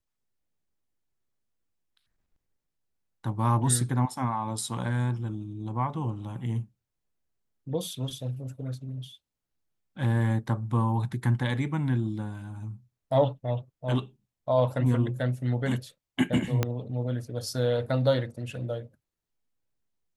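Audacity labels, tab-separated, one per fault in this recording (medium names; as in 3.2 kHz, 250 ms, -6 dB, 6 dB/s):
16.630000	16.630000	pop -11 dBFS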